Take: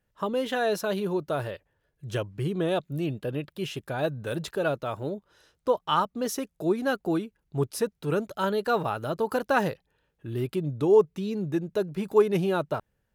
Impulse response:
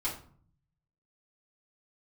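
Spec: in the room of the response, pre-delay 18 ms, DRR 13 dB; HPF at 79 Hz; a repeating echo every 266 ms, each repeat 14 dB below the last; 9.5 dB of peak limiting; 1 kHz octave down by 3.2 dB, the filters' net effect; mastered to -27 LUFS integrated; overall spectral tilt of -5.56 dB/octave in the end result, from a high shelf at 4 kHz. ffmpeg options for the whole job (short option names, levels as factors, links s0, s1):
-filter_complex "[0:a]highpass=79,equalizer=f=1000:t=o:g=-4.5,highshelf=f=4000:g=3,alimiter=limit=0.1:level=0:latency=1,aecho=1:1:266|532:0.2|0.0399,asplit=2[s0][s1];[1:a]atrim=start_sample=2205,adelay=18[s2];[s1][s2]afir=irnorm=-1:irlink=0,volume=0.133[s3];[s0][s3]amix=inputs=2:normalize=0,volume=1.5"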